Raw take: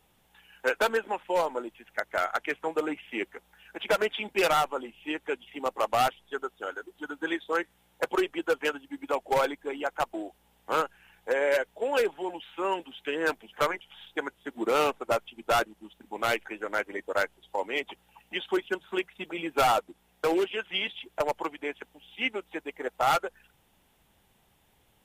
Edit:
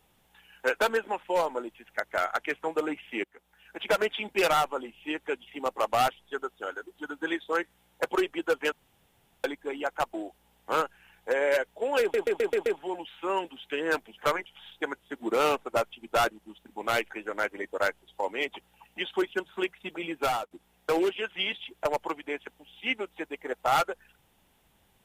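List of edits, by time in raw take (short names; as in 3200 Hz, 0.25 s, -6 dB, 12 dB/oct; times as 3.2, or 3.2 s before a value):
3.24–3.82 fade in, from -17 dB
8.72–9.44 room tone
12.01 stutter 0.13 s, 6 plays
19.27–19.86 fade out equal-power, to -19.5 dB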